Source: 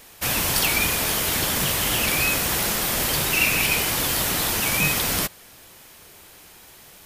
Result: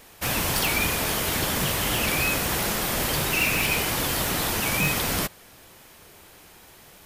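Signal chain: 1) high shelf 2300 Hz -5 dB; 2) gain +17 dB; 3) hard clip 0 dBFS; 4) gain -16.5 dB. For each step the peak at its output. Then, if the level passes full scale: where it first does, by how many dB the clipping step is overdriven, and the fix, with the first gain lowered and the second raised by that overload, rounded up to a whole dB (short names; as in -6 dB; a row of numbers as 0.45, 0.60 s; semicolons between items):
-10.0, +7.0, 0.0, -16.5 dBFS; step 2, 7.0 dB; step 2 +10 dB, step 4 -9.5 dB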